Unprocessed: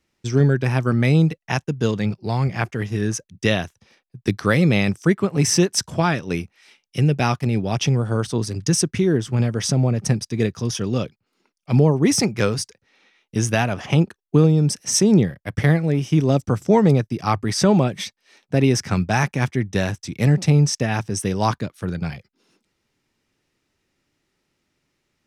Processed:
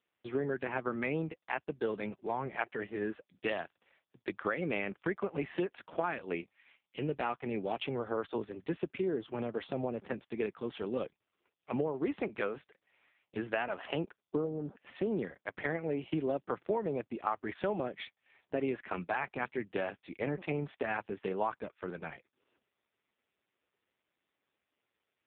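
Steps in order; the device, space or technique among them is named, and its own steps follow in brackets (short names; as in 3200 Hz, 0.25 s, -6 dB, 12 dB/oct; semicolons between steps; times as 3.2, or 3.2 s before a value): 8.8–9.99 dynamic EQ 1800 Hz, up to -6 dB, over -49 dBFS, Q 3.3; 14.28–14.76 spectral gain 1600–4200 Hz -23 dB; voicemail (BPF 390–3000 Hz; compressor 10:1, threshold -23 dBFS, peak gain reduction 10.5 dB; gain -4.5 dB; AMR-NB 5.15 kbps 8000 Hz)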